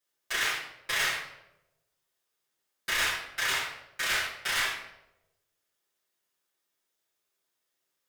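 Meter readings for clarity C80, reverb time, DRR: 7.5 dB, 0.90 s, -10.5 dB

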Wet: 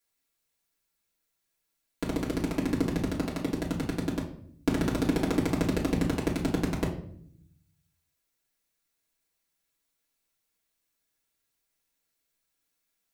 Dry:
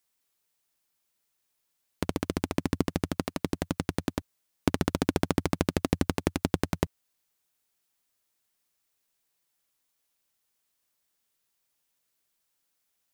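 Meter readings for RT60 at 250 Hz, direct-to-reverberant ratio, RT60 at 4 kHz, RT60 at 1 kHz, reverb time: 1.1 s, -5.5 dB, 0.45 s, 0.55 s, 0.65 s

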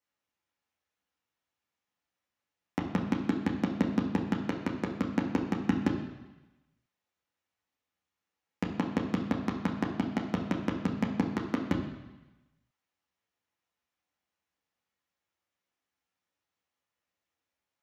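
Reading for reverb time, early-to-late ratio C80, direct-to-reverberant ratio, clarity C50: 1.1 s, 8.0 dB, -1.5 dB, 6.0 dB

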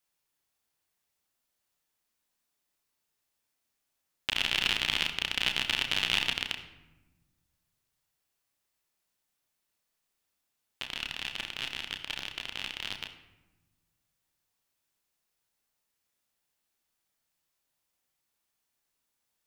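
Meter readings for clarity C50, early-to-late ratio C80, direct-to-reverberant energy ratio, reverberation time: 9.0 dB, 11.0 dB, 3.5 dB, 1.0 s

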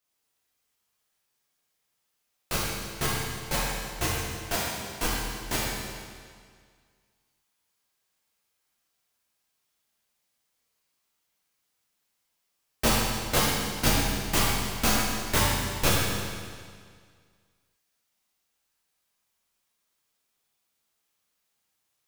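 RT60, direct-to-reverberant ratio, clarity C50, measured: 1.9 s, -7.5 dB, -2.5 dB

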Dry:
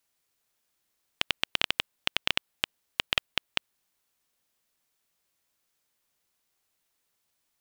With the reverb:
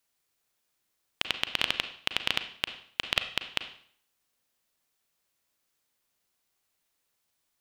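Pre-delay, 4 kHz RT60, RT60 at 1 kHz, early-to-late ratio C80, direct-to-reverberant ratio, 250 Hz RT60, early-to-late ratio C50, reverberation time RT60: 34 ms, 0.55 s, 0.55 s, 14.0 dB, 8.5 dB, 0.60 s, 11.0 dB, 0.55 s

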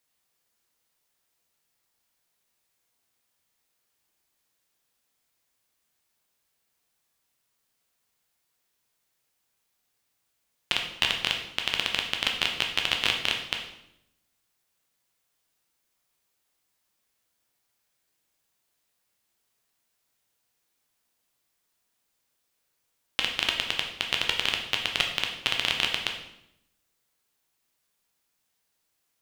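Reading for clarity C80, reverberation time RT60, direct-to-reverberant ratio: 9.0 dB, 0.80 s, 1.5 dB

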